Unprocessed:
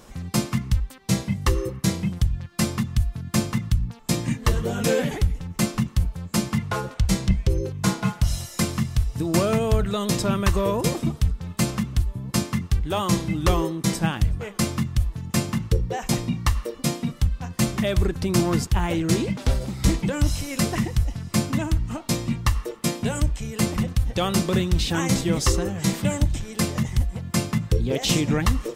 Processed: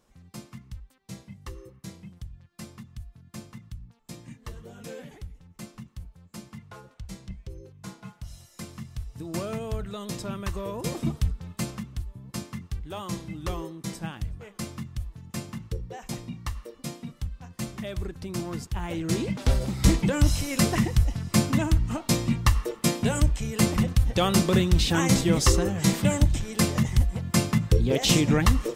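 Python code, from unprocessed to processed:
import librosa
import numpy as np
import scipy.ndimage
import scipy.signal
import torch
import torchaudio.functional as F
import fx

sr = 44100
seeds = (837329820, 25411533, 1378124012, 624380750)

y = fx.gain(x, sr, db=fx.line((8.28, -19.0), (9.34, -11.0), (10.73, -11.0), (11.09, -2.5), (11.92, -11.5), (18.6, -11.5), (19.61, 0.5)))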